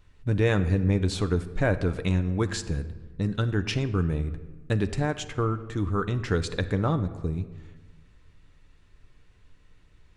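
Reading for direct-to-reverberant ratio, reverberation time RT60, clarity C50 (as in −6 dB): 8.5 dB, 1.3 s, 13.5 dB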